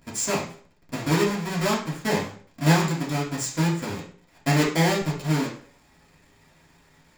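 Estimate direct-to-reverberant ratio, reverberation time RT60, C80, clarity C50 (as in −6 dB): −5.5 dB, 0.50 s, 11.0 dB, 6.5 dB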